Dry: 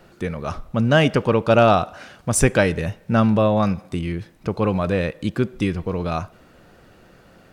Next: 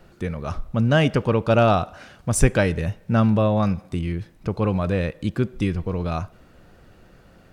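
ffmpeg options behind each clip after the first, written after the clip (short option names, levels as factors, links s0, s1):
-af "lowshelf=f=110:g=9.5,volume=0.668"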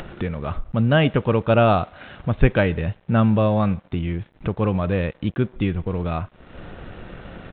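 -af "acompressor=mode=upward:threshold=0.0794:ratio=2.5,aresample=8000,aeval=exprs='sgn(val(0))*max(abs(val(0))-0.00473,0)':c=same,aresample=44100,volume=1.12"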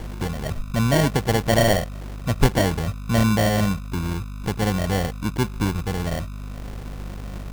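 -af "aeval=exprs='val(0)+0.0316*(sin(2*PI*50*n/s)+sin(2*PI*2*50*n/s)/2+sin(2*PI*3*50*n/s)/3+sin(2*PI*4*50*n/s)/4+sin(2*PI*5*50*n/s)/5)':c=same,acrusher=samples=35:mix=1:aa=0.000001,volume=0.841"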